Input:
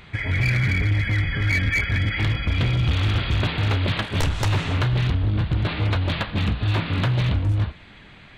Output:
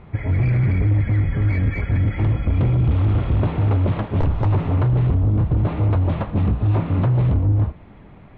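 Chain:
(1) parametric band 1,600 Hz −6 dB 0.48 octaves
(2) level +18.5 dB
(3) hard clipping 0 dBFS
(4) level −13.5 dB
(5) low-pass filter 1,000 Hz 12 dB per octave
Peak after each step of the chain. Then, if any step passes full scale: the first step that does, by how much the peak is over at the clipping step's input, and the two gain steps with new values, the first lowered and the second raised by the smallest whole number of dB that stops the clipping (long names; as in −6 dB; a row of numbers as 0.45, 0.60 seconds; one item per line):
−14.5, +4.0, 0.0, −13.5, −13.0 dBFS
step 2, 4.0 dB
step 2 +14.5 dB, step 4 −9.5 dB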